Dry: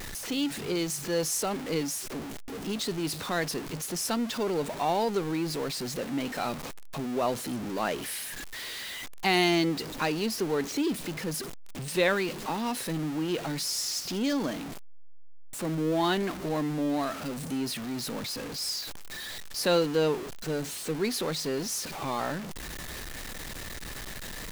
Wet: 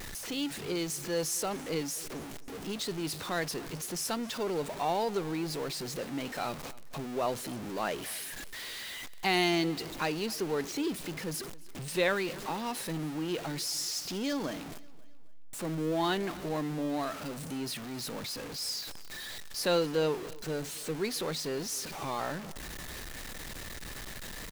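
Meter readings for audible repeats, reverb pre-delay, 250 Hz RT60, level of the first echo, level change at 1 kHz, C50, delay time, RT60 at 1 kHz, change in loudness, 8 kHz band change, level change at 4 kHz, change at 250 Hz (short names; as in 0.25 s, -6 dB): 2, none, none, -21.0 dB, -3.0 dB, none, 0.269 s, none, -3.5 dB, -3.0 dB, -3.0 dB, -4.5 dB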